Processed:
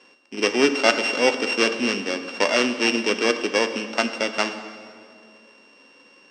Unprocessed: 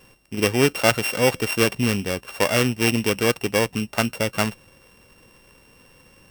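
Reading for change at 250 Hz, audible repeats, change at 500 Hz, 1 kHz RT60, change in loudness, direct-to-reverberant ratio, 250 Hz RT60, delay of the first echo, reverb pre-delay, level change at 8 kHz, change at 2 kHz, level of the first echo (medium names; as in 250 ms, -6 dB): -1.5 dB, no echo, 0.0 dB, 2.0 s, 0.0 dB, 8.0 dB, 2.7 s, no echo, 3 ms, -4.0 dB, +1.5 dB, no echo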